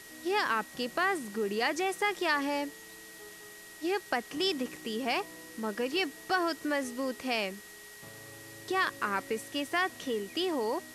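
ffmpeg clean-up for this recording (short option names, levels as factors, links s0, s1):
-af "adeclick=t=4,bandreject=f=1900:w=30,afftdn=nr=28:nf=-49"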